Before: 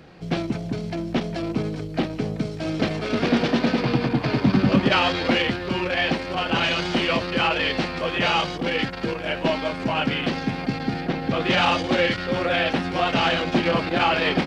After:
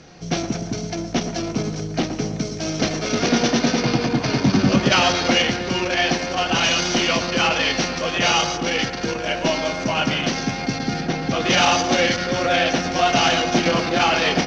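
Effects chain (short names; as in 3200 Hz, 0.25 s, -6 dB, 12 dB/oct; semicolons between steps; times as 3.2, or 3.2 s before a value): synth low-pass 6000 Hz, resonance Q 9.5; resonator 710 Hz, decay 0.17 s, harmonics all, mix 60%; on a send: dark delay 0.115 s, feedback 55%, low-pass 1900 Hz, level -9.5 dB; on the sum: gain +8.5 dB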